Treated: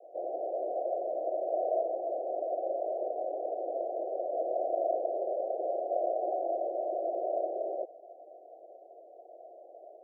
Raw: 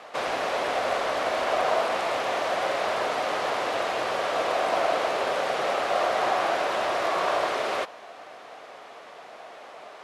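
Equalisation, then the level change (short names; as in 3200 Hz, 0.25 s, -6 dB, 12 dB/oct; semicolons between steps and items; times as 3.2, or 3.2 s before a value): elliptic high-pass 340 Hz, stop band 40 dB; steep low-pass 720 Hz 96 dB/oct; notch 430 Hz, Q 12; -3.0 dB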